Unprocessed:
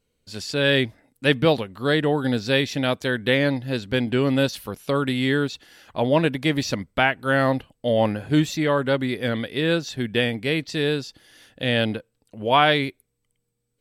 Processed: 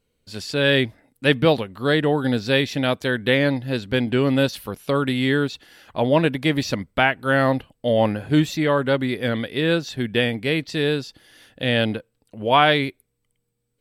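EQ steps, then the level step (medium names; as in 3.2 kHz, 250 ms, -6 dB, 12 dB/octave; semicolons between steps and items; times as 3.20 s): peaking EQ 6.5 kHz -3.5 dB 0.84 oct; +1.5 dB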